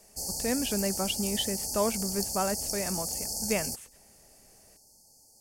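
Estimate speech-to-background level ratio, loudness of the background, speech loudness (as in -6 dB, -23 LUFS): -1.0 dB, -31.5 LUFS, -32.5 LUFS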